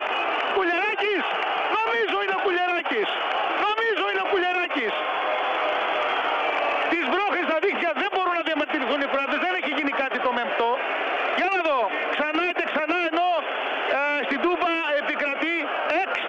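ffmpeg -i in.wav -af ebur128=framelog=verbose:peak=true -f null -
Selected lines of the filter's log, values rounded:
Integrated loudness:
  I:         -23.3 LUFS
  Threshold: -33.3 LUFS
Loudness range:
  LRA:         0.5 LU
  Threshold: -43.3 LUFS
  LRA low:   -23.5 LUFS
  LRA high:  -23.0 LUFS
True peak:
  Peak:      -12.4 dBFS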